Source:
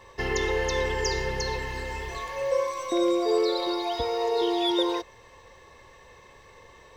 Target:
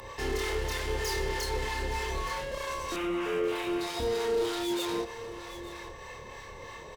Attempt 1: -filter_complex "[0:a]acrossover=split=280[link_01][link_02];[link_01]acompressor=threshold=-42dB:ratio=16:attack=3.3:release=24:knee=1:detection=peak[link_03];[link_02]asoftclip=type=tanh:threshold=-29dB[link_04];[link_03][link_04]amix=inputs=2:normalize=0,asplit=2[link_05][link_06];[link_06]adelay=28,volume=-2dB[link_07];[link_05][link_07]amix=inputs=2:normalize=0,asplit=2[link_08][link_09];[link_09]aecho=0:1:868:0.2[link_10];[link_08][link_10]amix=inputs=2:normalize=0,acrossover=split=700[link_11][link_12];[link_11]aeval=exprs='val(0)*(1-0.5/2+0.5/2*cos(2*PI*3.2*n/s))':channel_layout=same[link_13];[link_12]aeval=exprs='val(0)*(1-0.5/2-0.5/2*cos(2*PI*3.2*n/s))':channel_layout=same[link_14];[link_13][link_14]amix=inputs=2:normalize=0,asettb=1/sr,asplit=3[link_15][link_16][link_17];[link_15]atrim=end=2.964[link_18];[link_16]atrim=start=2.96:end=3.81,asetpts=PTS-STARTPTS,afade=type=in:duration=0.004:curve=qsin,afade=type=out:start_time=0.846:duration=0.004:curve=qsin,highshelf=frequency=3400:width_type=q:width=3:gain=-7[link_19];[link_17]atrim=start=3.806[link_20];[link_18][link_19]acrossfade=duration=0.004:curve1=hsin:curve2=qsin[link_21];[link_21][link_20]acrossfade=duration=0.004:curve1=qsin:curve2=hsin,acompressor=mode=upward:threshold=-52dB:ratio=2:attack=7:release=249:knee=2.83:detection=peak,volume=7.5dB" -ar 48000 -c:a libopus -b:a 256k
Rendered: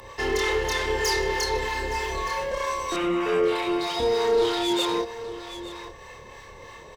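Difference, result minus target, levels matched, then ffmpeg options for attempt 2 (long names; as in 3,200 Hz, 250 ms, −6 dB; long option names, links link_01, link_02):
soft clipping: distortion −6 dB
-filter_complex "[0:a]acrossover=split=280[link_01][link_02];[link_01]acompressor=threshold=-42dB:ratio=16:attack=3.3:release=24:knee=1:detection=peak[link_03];[link_02]asoftclip=type=tanh:threshold=-40.5dB[link_04];[link_03][link_04]amix=inputs=2:normalize=0,asplit=2[link_05][link_06];[link_06]adelay=28,volume=-2dB[link_07];[link_05][link_07]amix=inputs=2:normalize=0,asplit=2[link_08][link_09];[link_09]aecho=0:1:868:0.2[link_10];[link_08][link_10]amix=inputs=2:normalize=0,acrossover=split=700[link_11][link_12];[link_11]aeval=exprs='val(0)*(1-0.5/2+0.5/2*cos(2*PI*3.2*n/s))':channel_layout=same[link_13];[link_12]aeval=exprs='val(0)*(1-0.5/2-0.5/2*cos(2*PI*3.2*n/s))':channel_layout=same[link_14];[link_13][link_14]amix=inputs=2:normalize=0,asettb=1/sr,asplit=3[link_15][link_16][link_17];[link_15]atrim=end=2.964[link_18];[link_16]atrim=start=2.96:end=3.81,asetpts=PTS-STARTPTS,afade=type=in:duration=0.004:curve=qsin,afade=type=out:start_time=0.846:duration=0.004:curve=qsin,highshelf=frequency=3400:width_type=q:width=3:gain=-7[link_19];[link_17]atrim=start=3.806[link_20];[link_18][link_19]acrossfade=duration=0.004:curve1=hsin:curve2=qsin[link_21];[link_21][link_20]acrossfade=duration=0.004:curve1=qsin:curve2=hsin,acompressor=mode=upward:threshold=-52dB:ratio=2:attack=7:release=249:knee=2.83:detection=peak,volume=7.5dB" -ar 48000 -c:a libopus -b:a 256k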